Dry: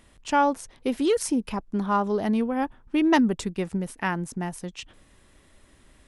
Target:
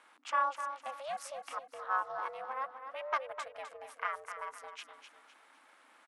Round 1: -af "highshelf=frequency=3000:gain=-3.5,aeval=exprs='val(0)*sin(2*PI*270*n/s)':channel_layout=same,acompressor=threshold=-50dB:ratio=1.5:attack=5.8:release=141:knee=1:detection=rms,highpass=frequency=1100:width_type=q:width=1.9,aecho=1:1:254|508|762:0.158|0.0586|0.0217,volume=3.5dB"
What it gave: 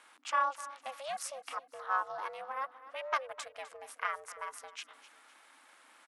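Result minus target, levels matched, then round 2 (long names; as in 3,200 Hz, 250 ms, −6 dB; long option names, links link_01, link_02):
8,000 Hz band +6.0 dB; echo-to-direct −7 dB
-af "highshelf=frequency=3000:gain=-12,aeval=exprs='val(0)*sin(2*PI*270*n/s)':channel_layout=same,acompressor=threshold=-50dB:ratio=1.5:attack=5.8:release=141:knee=1:detection=rms,highpass=frequency=1100:width_type=q:width=1.9,aecho=1:1:254|508|762|1016:0.355|0.131|0.0486|0.018,volume=3.5dB"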